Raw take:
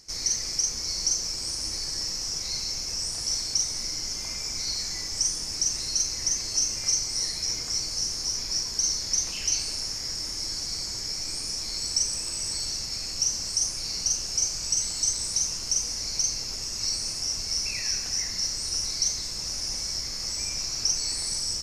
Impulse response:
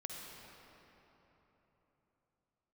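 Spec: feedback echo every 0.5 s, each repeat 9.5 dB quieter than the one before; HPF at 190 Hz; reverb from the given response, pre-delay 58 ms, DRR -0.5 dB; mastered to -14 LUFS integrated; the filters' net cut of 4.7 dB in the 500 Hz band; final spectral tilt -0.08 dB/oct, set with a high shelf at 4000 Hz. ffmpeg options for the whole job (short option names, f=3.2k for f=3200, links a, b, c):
-filter_complex "[0:a]highpass=190,equalizer=f=500:t=o:g=-6,highshelf=f=4k:g=3.5,aecho=1:1:500|1000|1500|2000:0.335|0.111|0.0365|0.012,asplit=2[a][b];[1:a]atrim=start_sample=2205,adelay=58[c];[b][c]afir=irnorm=-1:irlink=0,volume=2dB[d];[a][d]amix=inputs=2:normalize=0,volume=7dB"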